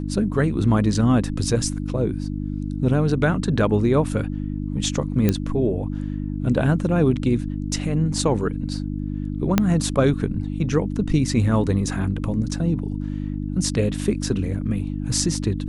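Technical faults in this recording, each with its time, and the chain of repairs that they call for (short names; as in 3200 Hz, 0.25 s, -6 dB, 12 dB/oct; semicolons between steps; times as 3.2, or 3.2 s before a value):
hum 50 Hz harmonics 6 -27 dBFS
5.29 pop -6 dBFS
9.58 pop -3 dBFS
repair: de-click; de-hum 50 Hz, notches 6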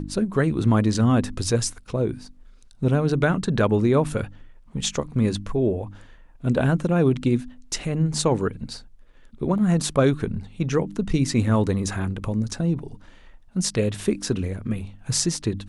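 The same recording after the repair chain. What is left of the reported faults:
5.29 pop
9.58 pop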